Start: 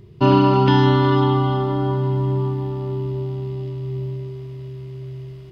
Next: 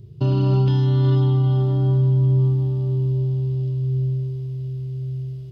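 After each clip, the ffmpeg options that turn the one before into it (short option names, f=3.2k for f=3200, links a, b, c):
-af "equalizer=f=125:t=o:w=1:g=9,equalizer=f=250:t=o:w=1:g=-7,equalizer=f=1k:t=o:w=1:g=-11,equalizer=f=2k:t=o:w=1:g=-11,alimiter=limit=-10.5dB:level=0:latency=1,volume=-1.5dB"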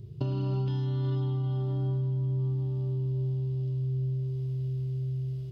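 -af "acompressor=threshold=-27dB:ratio=4,volume=-2dB"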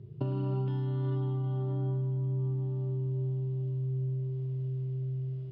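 -af "highpass=120,lowpass=2.1k"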